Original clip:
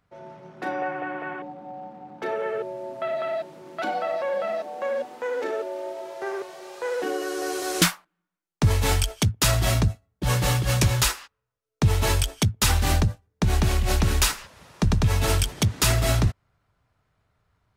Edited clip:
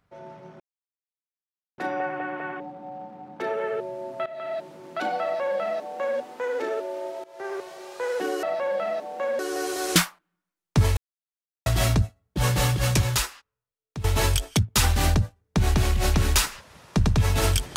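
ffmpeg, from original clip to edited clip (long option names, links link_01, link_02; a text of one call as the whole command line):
ffmpeg -i in.wav -filter_complex "[0:a]asplit=9[link_01][link_02][link_03][link_04][link_05][link_06][link_07][link_08][link_09];[link_01]atrim=end=0.6,asetpts=PTS-STARTPTS,afade=type=out:start_time=0.596:duration=0.004:curve=hsin,apad=pad_dur=1.18[link_10];[link_02]atrim=start=0.6:end=3.08,asetpts=PTS-STARTPTS,afade=type=in:duration=0.004:curve=hsin,afade=type=out:start_time=2.476:duration=0.004:curve=hsin:silence=0.16788[link_11];[link_03]atrim=start=3.08:end=6.06,asetpts=PTS-STARTPTS,afade=type=in:duration=0.39:silence=0.16788,afade=type=out:start_time=2.976:duration=0.004:curve=hsin:silence=0.112202[link_12];[link_04]atrim=start=6.06:end=7.252,asetpts=PTS-STARTPTS,afade=type=in:duration=0.47:curve=qsin:silence=0.112202[link_13];[link_05]atrim=start=4.048:end=5.012[link_14];[link_06]atrim=start=7.248:end=8.83,asetpts=PTS-STARTPTS,afade=type=out:start_time=1.578:duration=0.004:curve=hsin[link_15];[link_07]atrim=start=8.83:end=9.52,asetpts=PTS-STARTPTS,volume=0[link_16];[link_08]atrim=start=9.52:end=11.9,asetpts=PTS-STARTPTS,afade=type=in:duration=0.004:curve=hsin,afade=type=out:start_time=1.1:duration=1.28:silence=0.158489[link_17];[link_09]atrim=start=11.9,asetpts=PTS-STARTPTS,afade=type=in:duration=0.004:curve=hsin:silence=0.158489[link_18];[link_10][link_11][link_12][link_13]concat=n=4:v=0:a=1[link_19];[link_19][link_14]acrossfade=duration=0.004:curve1=hsin:curve2=hsin[link_20];[link_15][link_16][link_17][link_18]concat=n=4:v=0:a=1[link_21];[link_20][link_21]acrossfade=duration=0.004:curve1=hsin:curve2=hsin" out.wav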